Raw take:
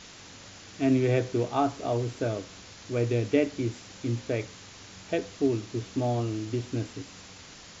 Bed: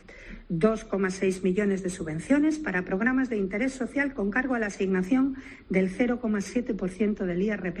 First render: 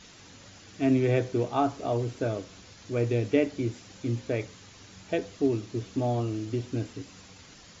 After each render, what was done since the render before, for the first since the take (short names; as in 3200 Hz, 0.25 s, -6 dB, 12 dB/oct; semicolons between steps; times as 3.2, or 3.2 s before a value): denoiser 6 dB, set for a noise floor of -48 dBFS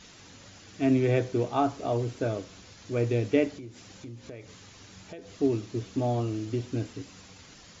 3.55–5.3 compressor 4:1, threshold -41 dBFS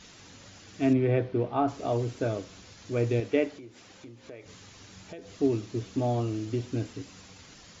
0.93–1.68 air absorption 310 m; 3.2–4.46 tone controls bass -9 dB, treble -5 dB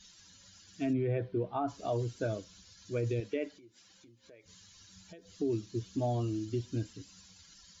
per-bin expansion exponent 1.5; limiter -24 dBFS, peak gain reduction 10 dB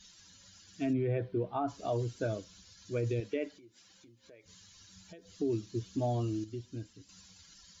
6.44–7.09 gain -7 dB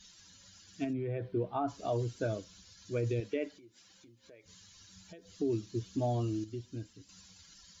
0.84–1.34 compressor 2:1, threshold -35 dBFS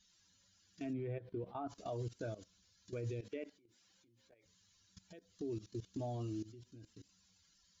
level quantiser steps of 18 dB; limiter -34 dBFS, peak gain reduction 8 dB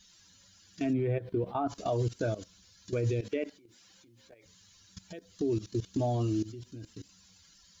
gain +11.5 dB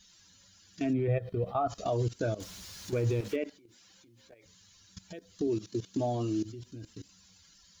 1.08–1.85 comb 1.6 ms, depth 66%; 2.4–3.36 zero-crossing step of -42.5 dBFS; 5.47–6.45 HPF 140 Hz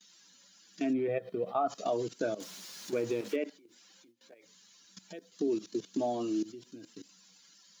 gate with hold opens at -51 dBFS; HPF 200 Hz 24 dB/oct